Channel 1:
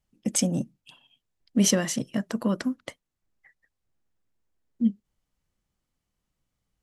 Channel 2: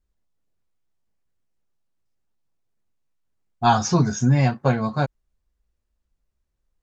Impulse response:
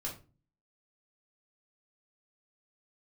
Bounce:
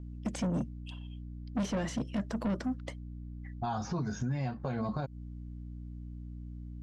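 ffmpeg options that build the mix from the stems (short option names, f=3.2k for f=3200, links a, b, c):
-filter_complex "[0:a]asoftclip=type=tanh:threshold=-27.5dB,volume=0.5dB[a];[1:a]lowpass=f=3.6k:p=1,aeval=exprs='val(0)+0.00891*(sin(2*PI*60*n/s)+sin(2*PI*2*60*n/s)/2+sin(2*PI*3*60*n/s)/3+sin(2*PI*4*60*n/s)/4+sin(2*PI*5*60*n/s)/5)':c=same,volume=-0.5dB[b];[a][b]amix=inputs=2:normalize=0,lowpass=6.4k,acrossover=split=1300|3200[c][d][e];[c]acompressor=threshold=-23dB:ratio=4[f];[d]acompressor=threshold=-47dB:ratio=4[g];[e]acompressor=threshold=-47dB:ratio=4[h];[f][g][h]amix=inputs=3:normalize=0,alimiter=level_in=1.5dB:limit=-24dB:level=0:latency=1:release=154,volume=-1.5dB"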